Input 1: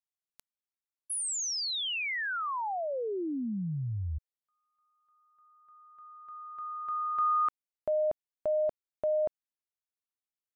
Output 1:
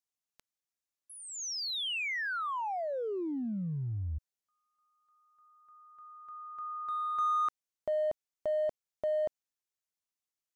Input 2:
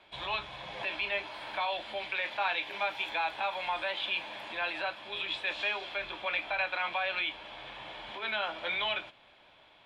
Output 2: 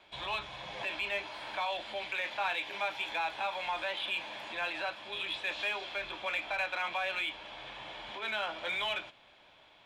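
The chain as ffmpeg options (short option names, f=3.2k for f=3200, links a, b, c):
-filter_complex "[0:a]acrossover=split=4600[a][b];[b]acompressor=threshold=-53dB:ratio=4:attack=1:release=60[c];[a][c]amix=inputs=2:normalize=0,equalizer=f=6.4k:w=1.6:g=5.5,asplit=2[d][e];[e]volume=34dB,asoftclip=hard,volume=-34dB,volume=-9dB[f];[d][f]amix=inputs=2:normalize=0,volume=-3.5dB"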